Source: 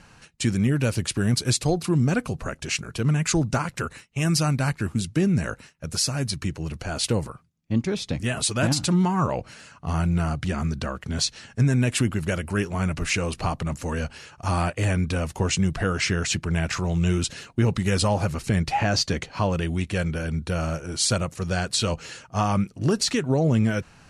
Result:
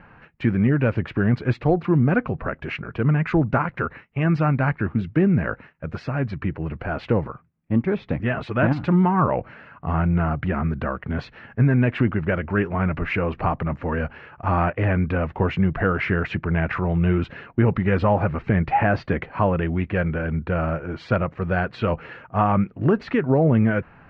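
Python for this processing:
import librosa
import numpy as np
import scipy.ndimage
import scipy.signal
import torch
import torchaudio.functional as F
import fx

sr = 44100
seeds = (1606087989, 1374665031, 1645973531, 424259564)

y = scipy.signal.sosfilt(scipy.signal.butter(4, 2100.0, 'lowpass', fs=sr, output='sos'), x)
y = fx.low_shelf(y, sr, hz=180.0, db=-4.5)
y = F.gain(torch.from_numpy(y), 5.0).numpy()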